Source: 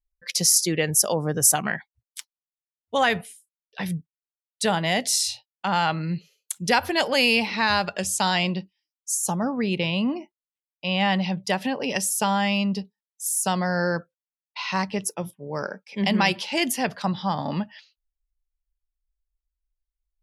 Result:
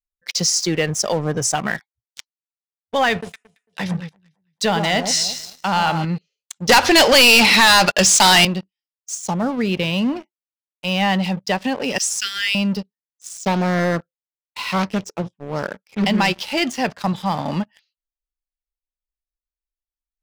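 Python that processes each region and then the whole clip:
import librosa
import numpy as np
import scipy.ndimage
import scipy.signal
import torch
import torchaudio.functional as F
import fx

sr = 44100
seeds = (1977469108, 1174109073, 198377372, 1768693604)

y = fx.chain(x, sr, fx.high_shelf(hz=5100.0, db=4.0),
    fx.echo_alternate(ms=112, hz=1300.0, feedback_pct=54, wet_db=-6.5), at=(3.11, 6.05))
y = fx.chain(y, sr, fx.highpass(hz=160.0, slope=12),
    fx.high_shelf(hz=2500.0, db=9.5),
    fx.leveller(passes=3), at=(6.69, 8.45))
y = fx.chain(y, sr, fx.steep_highpass(hz=1400.0, slope=96),
    fx.high_shelf(hz=3300.0, db=10.0), at=(11.98, 12.55))
y = fx.chain(y, sr, fx.steep_lowpass(hz=8700.0, slope=36),
    fx.low_shelf(hz=110.0, db=8.0),
    fx.doppler_dist(depth_ms=0.62), at=(13.37, 16.05))
y = scipy.signal.sosfilt(scipy.signal.butter(4, 6700.0, 'lowpass', fs=sr, output='sos'), y)
y = fx.leveller(y, sr, passes=3)
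y = y * librosa.db_to_amplitude(-7.0)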